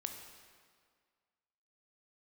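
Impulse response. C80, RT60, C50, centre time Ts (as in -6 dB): 7.0 dB, 1.9 s, 5.5 dB, 41 ms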